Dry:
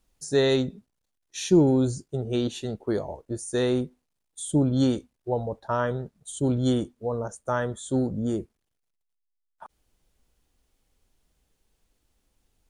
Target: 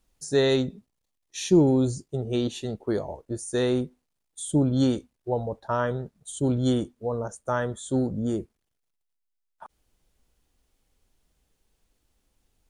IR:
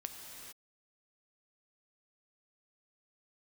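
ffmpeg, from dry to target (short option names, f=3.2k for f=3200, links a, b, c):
-filter_complex "[0:a]asettb=1/sr,asplit=3[a][b][c];[a]atrim=end=0.664[d];[b]atrim=start=0.66:end=2.82,asetpts=PTS-STARTPTS,afade=t=in:d=0.004:c=qsin,afade=t=out:st=2.156:d=0.004:c=qsin,bandreject=f=1.5k:w=8.2[e];[c]atrim=start=2.816[f];[d][e]acrossfade=d=0.004:c1=hsin:c2=qsin[g];[g][f]acrossfade=d=0.004:c1=qsin:c2=hsin"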